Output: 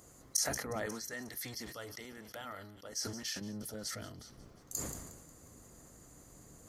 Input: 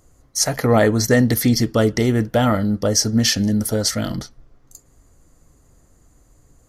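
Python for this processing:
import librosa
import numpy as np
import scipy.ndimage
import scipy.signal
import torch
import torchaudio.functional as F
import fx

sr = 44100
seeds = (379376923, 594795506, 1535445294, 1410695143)

y = fx.octave_divider(x, sr, octaves=1, level_db=2.0)
y = fx.gate_flip(y, sr, shuts_db=-17.0, range_db=-24)
y = fx.echo_wet_highpass(y, sr, ms=180, feedback_pct=62, hz=2000.0, wet_db=-18.5)
y = fx.dynamic_eq(y, sr, hz=1500.0, q=1.0, threshold_db=-56.0, ratio=4.0, max_db=4)
y = fx.highpass(y, sr, hz=fx.steps((0.0, 280.0), (0.86, 1200.0), (3.41, 200.0)), slope=6)
y = fx.high_shelf(y, sr, hz=5600.0, db=4.5)
y = fx.sustainer(y, sr, db_per_s=43.0)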